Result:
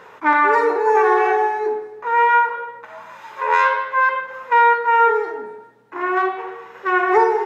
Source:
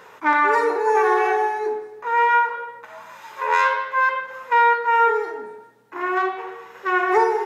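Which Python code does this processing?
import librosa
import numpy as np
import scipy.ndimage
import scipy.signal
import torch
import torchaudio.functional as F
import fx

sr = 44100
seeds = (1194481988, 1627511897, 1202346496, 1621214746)

y = fx.high_shelf(x, sr, hz=4900.0, db=-10.5)
y = y * 10.0 ** (3.0 / 20.0)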